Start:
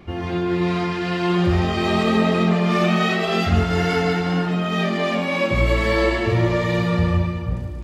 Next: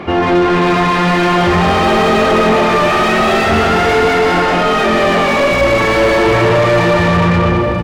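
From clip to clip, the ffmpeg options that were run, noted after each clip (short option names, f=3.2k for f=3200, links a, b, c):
-filter_complex "[0:a]asplit=2[a][b];[b]aecho=0:1:180|315|416.2|492.2|549.1:0.631|0.398|0.251|0.158|0.1[c];[a][c]amix=inputs=2:normalize=0,asplit=2[d][e];[e]highpass=f=720:p=1,volume=33dB,asoftclip=type=tanh:threshold=-2dB[f];[d][f]amix=inputs=2:normalize=0,lowpass=f=1.1k:p=1,volume=-6dB"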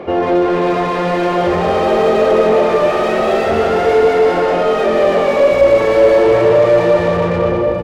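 -af "equalizer=f=510:t=o:w=1:g=14.5,volume=-9dB"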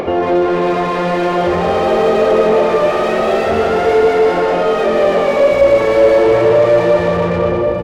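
-af "acompressor=mode=upward:threshold=-14dB:ratio=2.5"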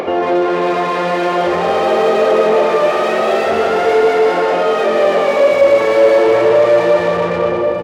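-af "highpass=f=360:p=1,volume=1.5dB"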